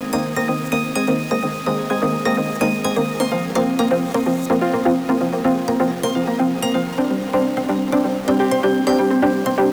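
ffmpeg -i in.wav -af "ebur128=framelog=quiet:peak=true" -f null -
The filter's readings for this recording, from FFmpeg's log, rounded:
Integrated loudness:
  I:         -19.1 LUFS
  Threshold: -29.1 LUFS
Loudness range:
  LRA:         1.6 LU
  Threshold: -39.3 LUFS
  LRA low:   -20.0 LUFS
  LRA high:  -18.4 LUFS
True peak:
  Peak:       -7.5 dBFS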